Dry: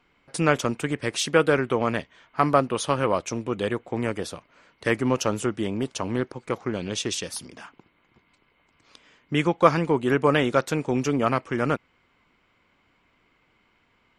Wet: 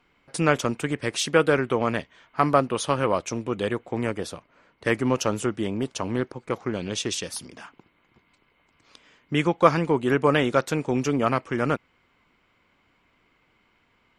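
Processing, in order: 4.11–6.59 s: tape noise reduction on one side only decoder only

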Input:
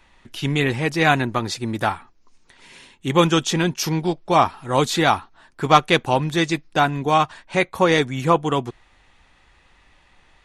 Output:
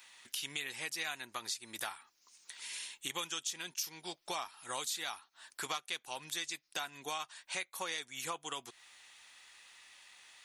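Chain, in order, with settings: differentiator; compression 5:1, threshold -48 dBFS, peak gain reduction 23 dB; trim +9.5 dB

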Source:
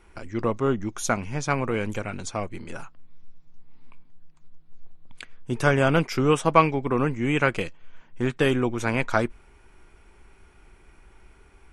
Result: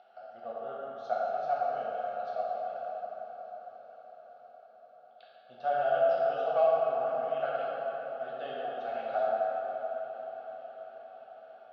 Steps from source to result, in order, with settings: upward compressor, threshold -32 dBFS; vowel filter a; cabinet simulation 220–5900 Hz, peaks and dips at 290 Hz +6 dB, 420 Hz -5 dB, 670 Hz +4 dB, 1 kHz -7 dB, 2.5 kHz -3 dB, 4.2 kHz +5 dB; static phaser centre 1.6 kHz, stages 8; echo that smears into a reverb 574 ms, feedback 71%, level -16 dB; plate-style reverb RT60 4.2 s, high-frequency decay 0.45×, pre-delay 0 ms, DRR -7.5 dB; trim -2.5 dB

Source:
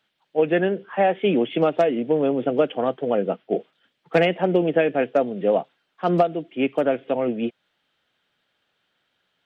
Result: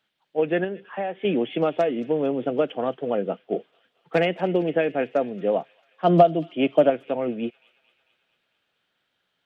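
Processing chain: feedback echo behind a high-pass 223 ms, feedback 61%, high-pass 2.7 kHz, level -14 dB; 0.64–1.25 s: compression 2:1, threshold -27 dBFS, peak gain reduction 7.5 dB; 6.04–6.90 s: graphic EQ with 31 bands 160 Hz +10 dB, 315 Hz +7 dB, 630 Hz +12 dB, 1 kHz +3 dB, 3.15 kHz +8 dB; trim -3 dB

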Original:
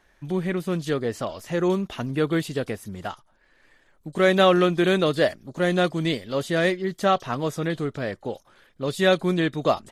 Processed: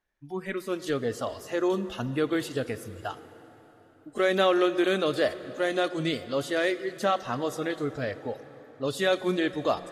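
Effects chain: spectral noise reduction 19 dB; in parallel at +1 dB: peak limiter -16.5 dBFS, peak gain reduction 10.5 dB; on the sum: plate-style reverb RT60 4.2 s, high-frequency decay 0.75×, DRR 13 dB; trim -8.5 dB

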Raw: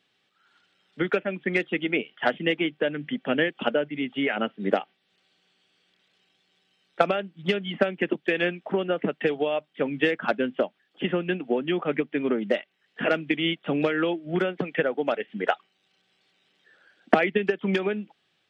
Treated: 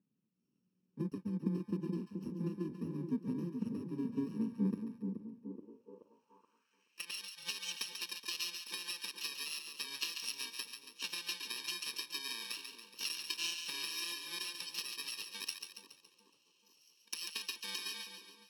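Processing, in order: bit-reversed sample order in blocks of 64 samples; compression 6:1, threshold -27 dBFS, peak gain reduction 15 dB; on a send: two-band feedback delay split 950 Hz, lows 427 ms, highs 140 ms, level -6.5 dB; on the sum: band-pass sweep 200 Hz -> 3.5 kHz, 5.33–7.21 s; trim +4 dB

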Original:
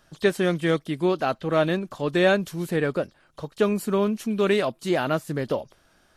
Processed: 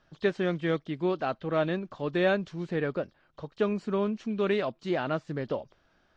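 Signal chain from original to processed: Bessel low-pass 3.8 kHz, order 8; trim -5.5 dB

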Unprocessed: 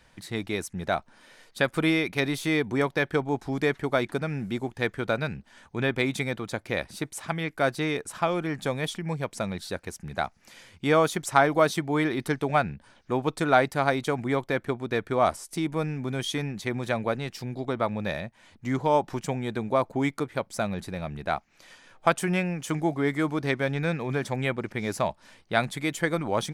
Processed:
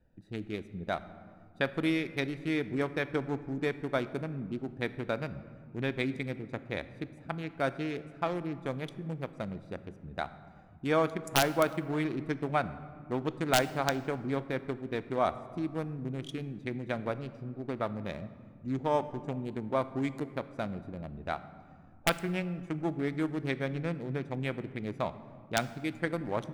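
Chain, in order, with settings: local Wiener filter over 41 samples; integer overflow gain 8.5 dB; on a send: reverberation, pre-delay 3 ms, DRR 13 dB; on the sum: trim -5.5 dB

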